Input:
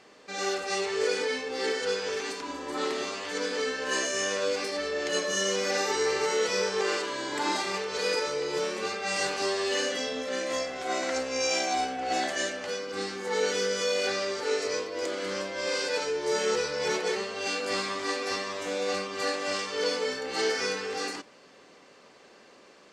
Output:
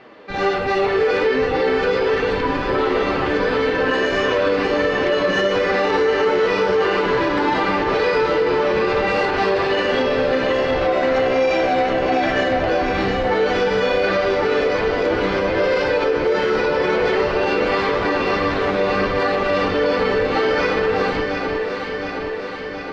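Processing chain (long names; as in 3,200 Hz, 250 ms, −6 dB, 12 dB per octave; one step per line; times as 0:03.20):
flanger 1.4 Hz, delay 7.4 ms, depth 4.1 ms, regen +36%
in parallel at −10.5 dB: comparator with hysteresis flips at −34.5 dBFS
on the sum: high-frequency loss of the air 360 metres
delay that swaps between a low-pass and a high-pass 359 ms, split 1,300 Hz, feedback 83%, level −5 dB
on a send at −13 dB: convolution reverb RT60 0.40 s, pre-delay 3 ms
on the sum: boost into a limiter +25.5 dB
level −9 dB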